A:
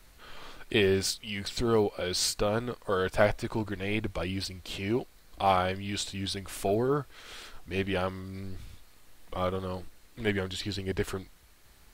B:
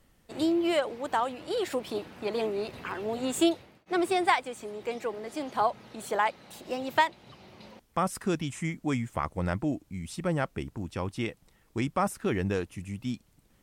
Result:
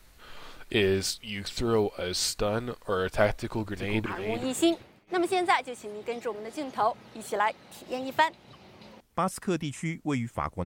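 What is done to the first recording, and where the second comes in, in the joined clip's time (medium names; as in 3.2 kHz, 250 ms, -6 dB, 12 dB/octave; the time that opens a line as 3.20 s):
A
3.34–4.06 s: echo throw 380 ms, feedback 15%, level -5.5 dB
4.06 s: go over to B from 2.85 s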